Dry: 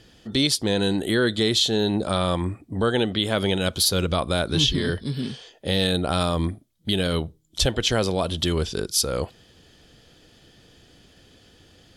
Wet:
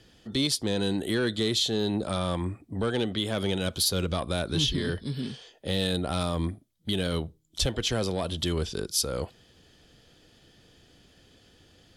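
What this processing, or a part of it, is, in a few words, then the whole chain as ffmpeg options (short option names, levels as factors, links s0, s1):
one-band saturation: -filter_complex "[0:a]acrossover=split=330|4100[s0][s1][s2];[s1]asoftclip=type=tanh:threshold=0.106[s3];[s0][s3][s2]amix=inputs=3:normalize=0,volume=0.596"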